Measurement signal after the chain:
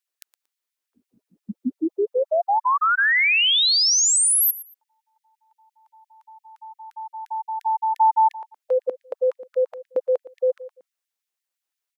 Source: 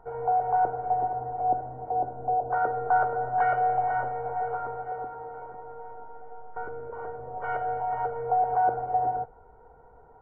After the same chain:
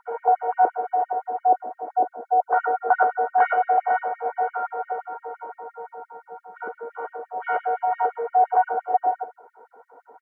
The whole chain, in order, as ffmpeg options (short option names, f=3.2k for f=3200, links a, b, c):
-af "asubboost=boost=4.5:cutoff=91,aecho=1:1:116|232:0.141|0.0311,afftfilt=real='re*gte(b*sr/1024,200*pow(1800/200,0.5+0.5*sin(2*PI*5.8*pts/sr)))':imag='im*gte(b*sr/1024,200*pow(1800/200,0.5+0.5*sin(2*PI*5.8*pts/sr)))':win_size=1024:overlap=0.75,volume=7.5dB"